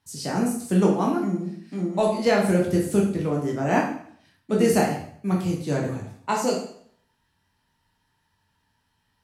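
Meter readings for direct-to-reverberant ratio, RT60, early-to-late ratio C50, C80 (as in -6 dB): -2.5 dB, 0.60 s, 5.0 dB, 8.5 dB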